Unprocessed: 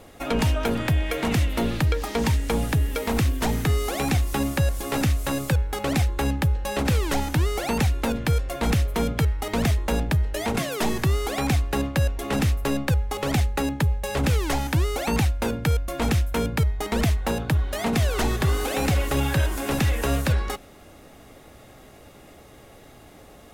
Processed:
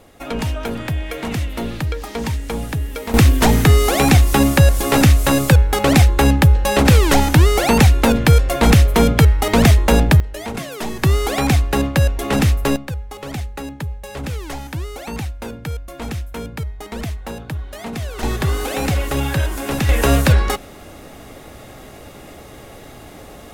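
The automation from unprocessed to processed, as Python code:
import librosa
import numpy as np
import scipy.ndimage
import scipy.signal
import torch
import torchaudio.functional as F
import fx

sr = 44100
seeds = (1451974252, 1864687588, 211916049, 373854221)

y = fx.gain(x, sr, db=fx.steps((0.0, -0.5), (3.14, 11.0), (10.2, -1.5), (11.03, 7.0), (12.76, -4.5), (18.23, 3.0), (19.89, 9.5)))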